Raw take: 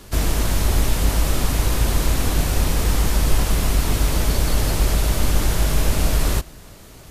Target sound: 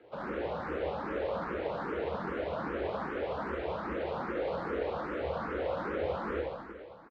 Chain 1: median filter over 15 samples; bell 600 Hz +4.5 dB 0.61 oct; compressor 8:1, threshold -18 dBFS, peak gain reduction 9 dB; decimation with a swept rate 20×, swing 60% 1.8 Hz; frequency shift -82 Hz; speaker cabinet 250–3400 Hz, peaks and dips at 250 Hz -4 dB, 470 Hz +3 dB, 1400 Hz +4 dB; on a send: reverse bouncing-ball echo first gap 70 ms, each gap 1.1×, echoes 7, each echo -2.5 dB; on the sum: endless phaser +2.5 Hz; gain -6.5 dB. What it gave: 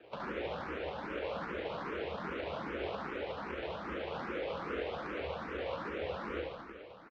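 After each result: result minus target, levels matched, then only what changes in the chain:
compressor: peak gain reduction +9 dB; decimation with a swept rate: distortion +12 dB
remove: compressor 8:1, threshold -18 dBFS, peak gain reduction 9 dB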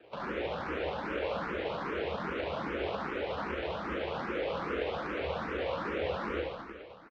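decimation with a swept rate: distortion +12 dB
change: decimation with a swept rate 4×, swing 60% 1.8 Hz

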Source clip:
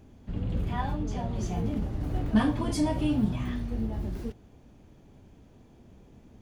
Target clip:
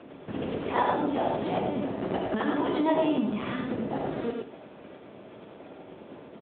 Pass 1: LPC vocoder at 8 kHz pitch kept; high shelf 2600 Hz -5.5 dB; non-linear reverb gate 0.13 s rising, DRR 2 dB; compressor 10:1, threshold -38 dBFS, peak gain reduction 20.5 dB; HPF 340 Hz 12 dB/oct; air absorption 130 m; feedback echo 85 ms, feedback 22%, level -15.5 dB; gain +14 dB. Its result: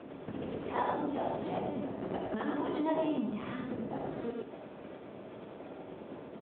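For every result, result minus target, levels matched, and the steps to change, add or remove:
compressor: peak gain reduction +6.5 dB; 4000 Hz band -2.0 dB
change: compressor 10:1, threshold -30.5 dBFS, peak gain reduction 13.5 dB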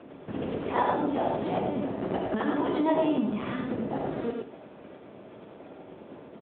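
4000 Hz band -3.0 dB
remove: high shelf 2600 Hz -5.5 dB

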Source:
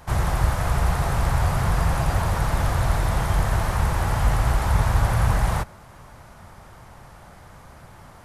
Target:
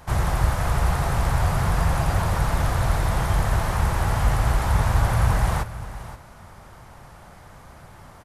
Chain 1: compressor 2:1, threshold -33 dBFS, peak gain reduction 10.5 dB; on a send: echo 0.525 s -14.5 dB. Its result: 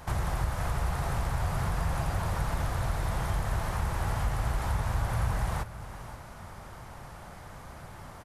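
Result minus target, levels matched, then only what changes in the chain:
compressor: peak gain reduction +10.5 dB
remove: compressor 2:1, threshold -33 dBFS, peak gain reduction 10.5 dB

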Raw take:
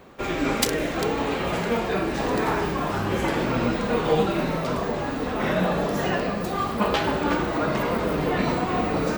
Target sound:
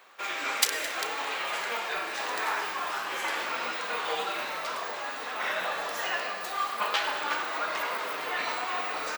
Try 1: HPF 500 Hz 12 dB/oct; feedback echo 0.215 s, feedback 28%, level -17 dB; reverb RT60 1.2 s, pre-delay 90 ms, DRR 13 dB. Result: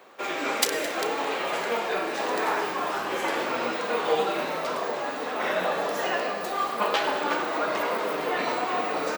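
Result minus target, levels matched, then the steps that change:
500 Hz band +7.0 dB
change: HPF 1100 Hz 12 dB/oct

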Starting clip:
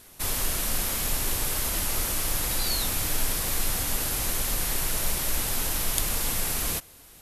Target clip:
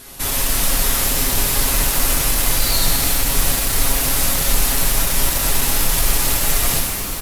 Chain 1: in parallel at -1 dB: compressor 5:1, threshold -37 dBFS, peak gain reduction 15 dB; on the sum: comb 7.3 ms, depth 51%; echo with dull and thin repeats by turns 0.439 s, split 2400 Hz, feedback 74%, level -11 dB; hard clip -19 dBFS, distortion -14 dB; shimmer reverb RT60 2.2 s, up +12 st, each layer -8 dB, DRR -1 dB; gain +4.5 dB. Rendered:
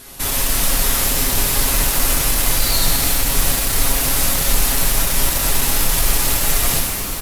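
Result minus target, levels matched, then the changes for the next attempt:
compressor: peak gain reduction -5 dB
change: compressor 5:1, threshold -43 dBFS, peak gain reduction 20 dB

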